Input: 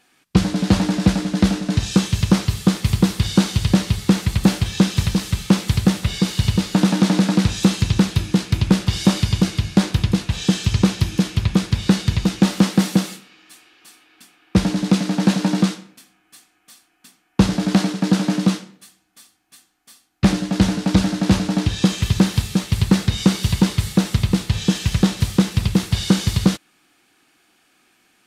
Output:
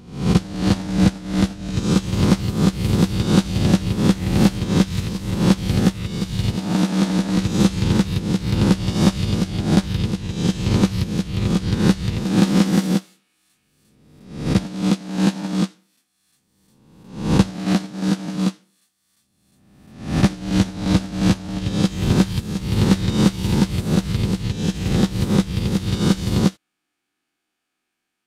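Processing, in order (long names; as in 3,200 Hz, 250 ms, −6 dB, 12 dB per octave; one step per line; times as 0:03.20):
peak hold with a rise ahead of every peak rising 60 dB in 1.38 s
expander for the loud parts 2.5 to 1, over −21 dBFS
level −1 dB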